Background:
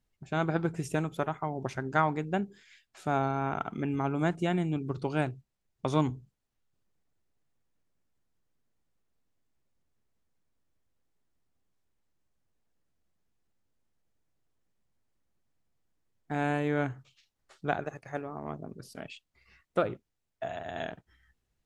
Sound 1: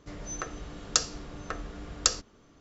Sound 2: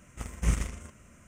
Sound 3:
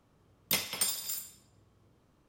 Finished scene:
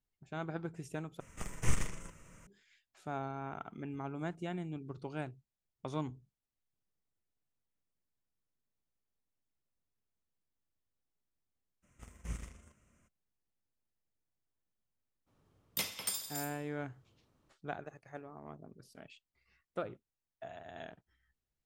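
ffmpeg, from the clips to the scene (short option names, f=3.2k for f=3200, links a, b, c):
-filter_complex "[2:a]asplit=2[a][b];[0:a]volume=-11dB[c];[a]afreqshift=-53[d];[c]asplit=2[e][f];[e]atrim=end=1.204[g];[d]atrim=end=1.27,asetpts=PTS-STARTPTS,volume=-1.5dB[h];[f]atrim=start=2.466[i];[b]atrim=end=1.27,asetpts=PTS-STARTPTS,volume=-15dB,afade=t=in:d=0.02,afade=t=out:st=1.25:d=0.02,adelay=11820[j];[3:a]atrim=end=2.28,asetpts=PTS-STARTPTS,volume=-6dB,afade=t=in:d=0.02,afade=t=out:st=2.26:d=0.02,adelay=15260[k];[g][h]acrossfade=d=0.004:c1=hsin:c2=hsin[l];[l][i]acrossfade=d=0.004:c1=hsin:c2=hsin[m];[m][j][k]amix=inputs=3:normalize=0"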